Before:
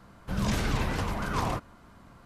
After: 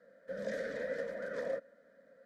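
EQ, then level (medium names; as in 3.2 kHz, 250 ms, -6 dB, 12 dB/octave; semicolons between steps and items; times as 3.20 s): vowel filter e; high-pass 100 Hz 6 dB/octave; static phaser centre 540 Hz, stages 8; +8.5 dB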